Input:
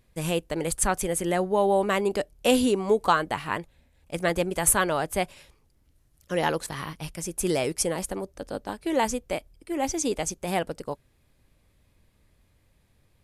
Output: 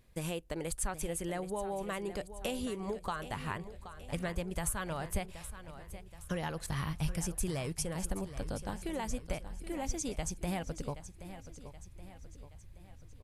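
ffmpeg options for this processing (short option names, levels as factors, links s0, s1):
-af "acompressor=threshold=0.0224:ratio=5,asubboost=boost=5.5:cutoff=140,aecho=1:1:775|1550|2325|3100|3875:0.224|0.112|0.056|0.028|0.014,volume=0.841"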